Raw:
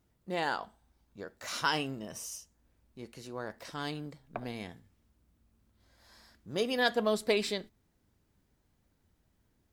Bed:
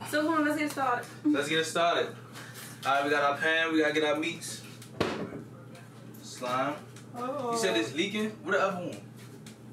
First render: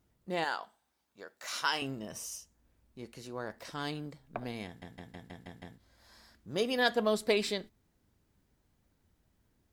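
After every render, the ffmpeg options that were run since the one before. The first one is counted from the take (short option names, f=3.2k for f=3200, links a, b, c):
-filter_complex "[0:a]asettb=1/sr,asplit=3[a][b][c];[a]atrim=end=0.444[d];[b]atrim=start=0.44:end=1.82,asetpts=PTS-STARTPTS,afade=t=in:d=0.004:c=qsin,afade=t=out:st=1.376:d=0.004:c=qsin,highpass=f=760:p=1[e];[c]atrim=start=1.816[f];[d][e]acrossfade=d=0.004:c1=hsin:c2=qsin[g];[g][f]acrossfade=d=0.004:c1=qsin:c2=hsin,asplit=8[h][i][j][k][l][m][n][o];[h]atrim=end=4.822[p];[i]atrim=start=4.658:end=4.822[q];[j]atrim=start=4.658:end=4.822[r];[k]atrim=start=4.658:end=4.822[s];[l]atrim=start=4.658:end=4.822[t];[m]atrim=start=4.658:end=4.822[u];[n]atrim=start=4.658:end=4.822[v];[o]atrim=start=5.778[w];[p][q]acrossfade=d=0.004:c1=hsin:c2=hsin[x];[x][r]acrossfade=d=0.004:c1=hsin:c2=hsin[y];[y][s]acrossfade=d=0.004:c1=hsin:c2=hsin[z];[z][t]acrossfade=d=0.004:c1=hsin:c2=hsin[aa];[aa][u]acrossfade=d=0.004:c1=hsin:c2=hsin[ab];[ab][v]acrossfade=d=0.004:c1=hsin:c2=hsin[ac];[ac][w]acrossfade=d=0.004:c1=hsin:c2=hsin"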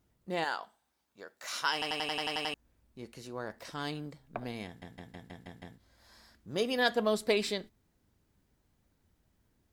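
-filter_complex "[0:a]asplit=10[a][b][c][d][e][f][g][h][i][j];[a]atrim=end=1.822[k];[b]atrim=start=1.728:end=1.822[l];[c]atrim=start=1.728:end=1.822[m];[d]atrim=start=1.728:end=1.822[n];[e]atrim=start=1.728:end=1.822[o];[f]atrim=start=1.728:end=1.822[p];[g]atrim=start=1.728:end=1.822[q];[h]atrim=start=1.728:end=1.822[r];[i]atrim=start=1.728:end=1.822[s];[j]atrim=start=2.538[t];[k][l]acrossfade=d=0.004:c1=hsin:c2=hsin[u];[u][m]acrossfade=d=0.004:c1=hsin:c2=hsin[v];[v][n]acrossfade=d=0.004:c1=hsin:c2=hsin[w];[w][o]acrossfade=d=0.004:c1=hsin:c2=hsin[x];[x][p]acrossfade=d=0.004:c1=hsin:c2=hsin[y];[y][q]acrossfade=d=0.004:c1=hsin:c2=hsin[z];[z][r]acrossfade=d=0.004:c1=hsin:c2=hsin[aa];[aa][s]acrossfade=d=0.004:c1=hsin:c2=hsin[ab];[ab][t]acrossfade=d=0.004:c1=hsin:c2=hsin"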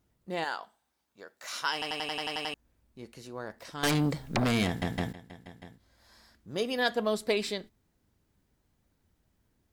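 -filter_complex "[0:a]asettb=1/sr,asplit=3[a][b][c];[a]atrim=end=3.834[d];[b]atrim=start=3.83:end=5.13,asetpts=PTS-STARTPTS,afade=t=in:d=0.004:c=qsin,afade=t=out:st=1.296:d=0.004:c=qsin,aeval=exprs='0.0841*sin(PI/2*5.01*val(0)/0.0841)':c=same[e];[c]atrim=start=5.126[f];[d][e]acrossfade=d=0.004:c1=hsin:c2=qsin[g];[g][f]acrossfade=d=0.004:c1=qsin:c2=hsin"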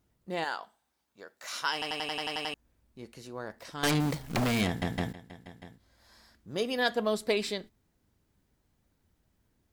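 -filter_complex "[0:a]asettb=1/sr,asplit=3[a][b][c];[a]atrim=end=4.004[d];[b]atrim=start=4:end=4.61,asetpts=PTS-STARTPTS,afade=t=in:d=0.004:c=qsin,afade=t=out:st=0.606:d=0.004:c=qsin,acrusher=bits=2:mode=log:mix=0:aa=0.000001[e];[c]atrim=start=4.606[f];[d][e]acrossfade=d=0.004:c1=hsin:c2=qsin[g];[g][f]acrossfade=d=0.004:c1=qsin:c2=hsin"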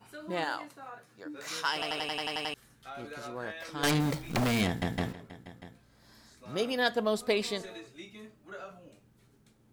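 -filter_complex "[1:a]volume=-17.5dB[a];[0:a][a]amix=inputs=2:normalize=0"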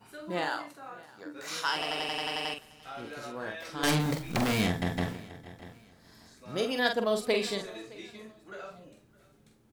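-filter_complex "[0:a]asplit=2[a][b];[b]adelay=45,volume=-5.5dB[c];[a][c]amix=inputs=2:normalize=0,aecho=1:1:615|1230:0.075|0.027"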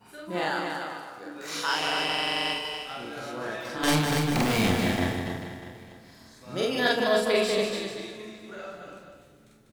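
-filter_complex "[0:a]asplit=2[a][b];[b]adelay=31,volume=-11.5dB[c];[a][c]amix=inputs=2:normalize=0,asplit=2[d][e];[e]aecho=0:1:45|197|289|440|547:0.596|0.562|0.631|0.335|0.168[f];[d][f]amix=inputs=2:normalize=0"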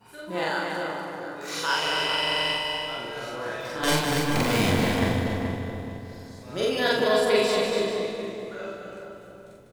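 -filter_complex "[0:a]asplit=2[a][b];[b]adelay=43,volume=-4dB[c];[a][c]amix=inputs=2:normalize=0,asplit=2[d][e];[e]adelay=425,lowpass=f=1k:p=1,volume=-3.5dB,asplit=2[f][g];[g]adelay=425,lowpass=f=1k:p=1,volume=0.43,asplit=2[h][i];[i]adelay=425,lowpass=f=1k:p=1,volume=0.43,asplit=2[j][k];[k]adelay=425,lowpass=f=1k:p=1,volume=0.43,asplit=2[l][m];[m]adelay=425,lowpass=f=1k:p=1,volume=0.43[n];[d][f][h][j][l][n]amix=inputs=6:normalize=0"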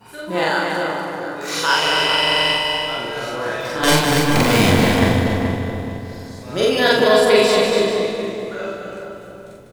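-af "volume=8.5dB,alimiter=limit=-2dB:level=0:latency=1"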